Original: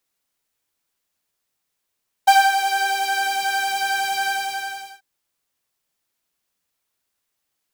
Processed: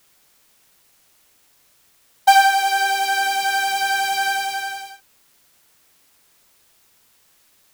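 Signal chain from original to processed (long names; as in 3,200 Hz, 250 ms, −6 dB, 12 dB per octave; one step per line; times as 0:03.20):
bit-depth reduction 10 bits, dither triangular
level +2 dB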